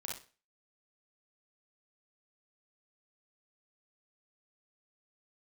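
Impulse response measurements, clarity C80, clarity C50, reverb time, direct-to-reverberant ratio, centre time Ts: 11.0 dB, 2.5 dB, 0.35 s, -2.0 dB, 36 ms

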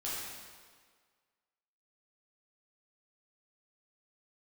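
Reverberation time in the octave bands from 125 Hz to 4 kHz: 1.4, 1.6, 1.7, 1.7, 1.5, 1.4 s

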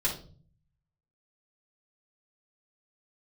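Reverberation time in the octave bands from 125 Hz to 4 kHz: 1.0, 0.80, 0.50, 0.35, 0.30, 0.35 s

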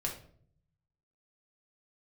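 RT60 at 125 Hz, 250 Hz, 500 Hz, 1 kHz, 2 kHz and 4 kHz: 1.3, 0.90, 0.65, 0.50, 0.40, 0.35 s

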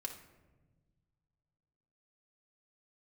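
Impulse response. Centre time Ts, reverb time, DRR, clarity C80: 18 ms, not exponential, 1.5 dB, 11.0 dB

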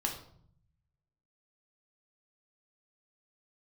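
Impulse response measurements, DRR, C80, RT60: 0.5 dB, 11.0 dB, 0.60 s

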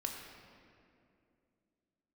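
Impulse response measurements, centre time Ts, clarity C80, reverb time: 72 ms, 4.0 dB, 2.5 s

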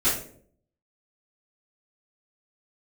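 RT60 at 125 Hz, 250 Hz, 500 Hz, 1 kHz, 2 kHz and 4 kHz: 0.75, 0.75, 0.70, 0.45, 0.40, 0.35 s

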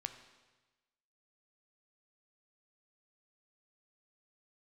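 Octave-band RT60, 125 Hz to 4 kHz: 1.4, 1.2, 1.2, 1.2, 1.2, 1.2 s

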